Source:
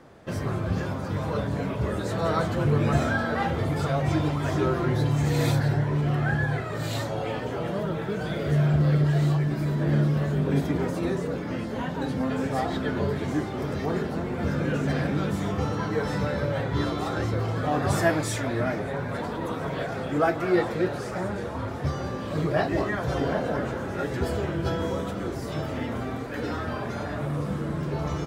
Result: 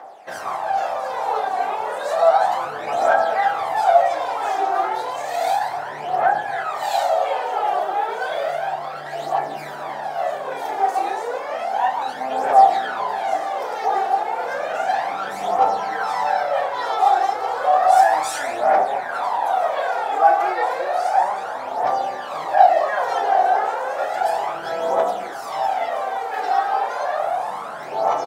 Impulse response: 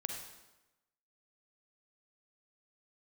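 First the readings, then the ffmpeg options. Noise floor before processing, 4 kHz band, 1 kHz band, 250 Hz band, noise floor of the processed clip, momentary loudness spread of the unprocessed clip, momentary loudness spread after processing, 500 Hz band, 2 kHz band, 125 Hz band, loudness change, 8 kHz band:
-33 dBFS, +4.0 dB, +16.0 dB, -14.5 dB, -31 dBFS, 8 LU, 10 LU, +6.0 dB, +5.0 dB, under -25 dB, +6.0 dB, +3.5 dB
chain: -filter_complex "[0:a]alimiter=limit=-19dB:level=0:latency=1:release=40,highpass=f=760:t=q:w=7.2,asplit=2[a][b];[b]adelay=32,volume=-7dB[c];[a][c]amix=inputs=2:normalize=0,asplit=2[d][e];[1:a]atrim=start_sample=2205[f];[e][f]afir=irnorm=-1:irlink=0,volume=2dB[g];[d][g]amix=inputs=2:normalize=0,aphaser=in_gain=1:out_gain=1:delay=2.7:decay=0.58:speed=0.32:type=triangular,volume=-4.5dB"

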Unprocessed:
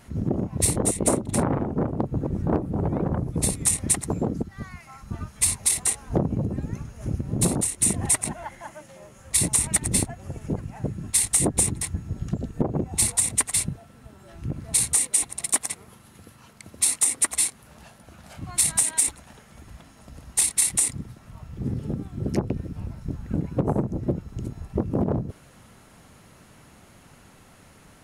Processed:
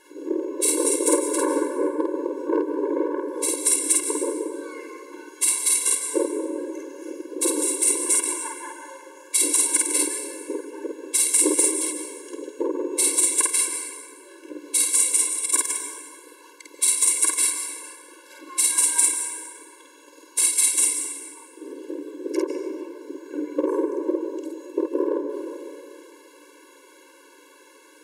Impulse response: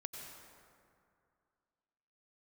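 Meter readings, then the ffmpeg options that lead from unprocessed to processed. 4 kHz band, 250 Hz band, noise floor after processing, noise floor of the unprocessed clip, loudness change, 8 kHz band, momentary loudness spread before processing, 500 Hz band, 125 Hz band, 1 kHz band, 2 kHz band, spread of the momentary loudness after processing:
+2.0 dB, 0.0 dB, -51 dBFS, -52 dBFS, +2.5 dB, +3.0 dB, 16 LU, +5.5 dB, under -40 dB, +1.5 dB, +3.0 dB, 19 LU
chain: -filter_complex "[0:a]asplit=2[a][b];[1:a]atrim=start_sample=2205,adelay=50[c];[b][c]afir=irnorm=-1:irlink=0,volume=3dB[d];[a][d]amix=inputs=2:normalize=0,afftfilt=real='re*eq(mod(floor(b*sr/1024/290),2),1)':imag='im*eq(mod(floor(b*sr/1024/290),2),1)':win_size=1024:overlap=0.75,volume=3dB"

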